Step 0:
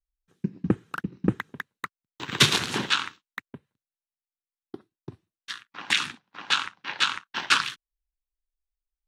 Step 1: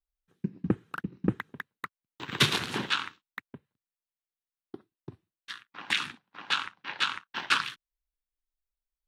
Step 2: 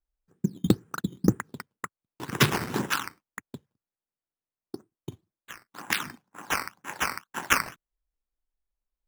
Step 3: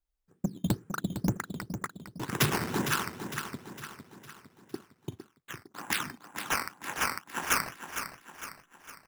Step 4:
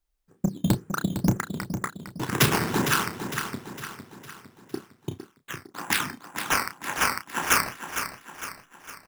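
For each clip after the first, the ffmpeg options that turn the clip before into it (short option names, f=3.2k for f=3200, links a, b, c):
-af "equalizer=f=6.7k:t=o:w=1.1:g=-6,volume=-3.5dB"
-af "adynamicsmooth=sensitivity=0.5:basefreq=1.5k,acrusher=samples=9:mix=1:aa=0.000001:lfo=1:lforange=9:lforate=2,volume=5.5dB"
-filter_complex "[0:a]acrossover=split=6100[a][b];[a]asoftclip=type=tanh:threshold=-20.5dB[c];[c][b]amix=inputs=2:normalize=0,aecho=1:1:457|914|1371|1828|2285:0.355|0.17|0.0817|0.0392|0.0188"
-filter_complex "[0:a]asplit=2[a][b];[b]adelay=31,volume=-9dB[c];[a][c]amix=inputs=2:normalize=0,volume=5.5dB"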